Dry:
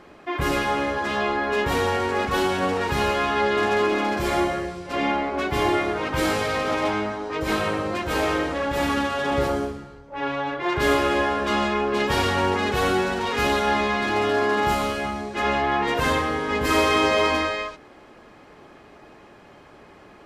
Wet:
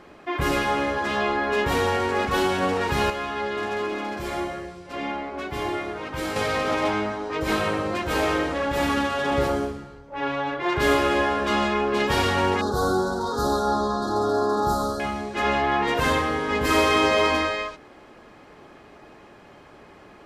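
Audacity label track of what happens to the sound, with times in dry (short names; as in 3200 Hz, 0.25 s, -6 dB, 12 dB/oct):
3.100000	6.360000	gain -6.5 dB
12.610000	15.000000	elliptic band-stop 1400–4000 Hz, stop band 60 dB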